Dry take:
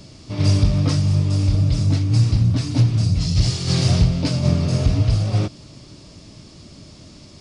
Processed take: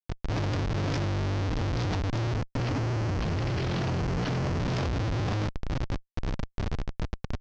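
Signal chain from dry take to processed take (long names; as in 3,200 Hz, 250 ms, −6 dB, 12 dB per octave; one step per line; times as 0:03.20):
time-frequency cells dropped at random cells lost 28%
downward compressor 3 to 1, threshold −24 dBFS, peak gain reduction 10 dB
mains-hum notches 60/120/180/240/300/360/420/480/540 Hz
comparator with hysteresis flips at −36.5 dBFS
0:02.36–0:04.60: bad sample-rate conversion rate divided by 6×, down filtered, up hold
Butterworth low-pass 6,200 Hz 36 dB per octave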